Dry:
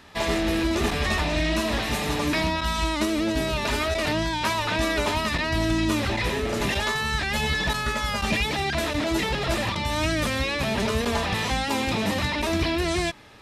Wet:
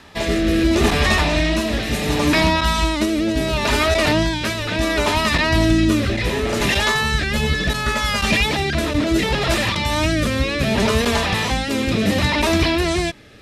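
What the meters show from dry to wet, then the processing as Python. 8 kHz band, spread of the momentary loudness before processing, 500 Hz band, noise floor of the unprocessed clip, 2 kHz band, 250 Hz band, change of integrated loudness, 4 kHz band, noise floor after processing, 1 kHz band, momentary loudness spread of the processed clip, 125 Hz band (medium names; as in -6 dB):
+5.5 dB, 2 LU, +6.0 dB, -28 dBFS, +6.0 dB, +7.0 dB, +6.5 dB, +6.0 dB, -24 dBFS, +4.5 dB, 5 LU, +7.0 dB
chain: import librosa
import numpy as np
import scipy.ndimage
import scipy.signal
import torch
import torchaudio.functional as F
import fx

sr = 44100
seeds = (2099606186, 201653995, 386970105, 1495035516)

y = fx.rotary(x, sr, hz=0.7)
y = y * 10.0 ** (8.5 / 20.0)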